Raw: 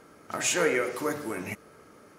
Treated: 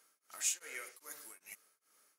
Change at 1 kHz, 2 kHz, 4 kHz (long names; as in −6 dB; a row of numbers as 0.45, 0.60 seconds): −22.0, −17.0, −11.5 decibels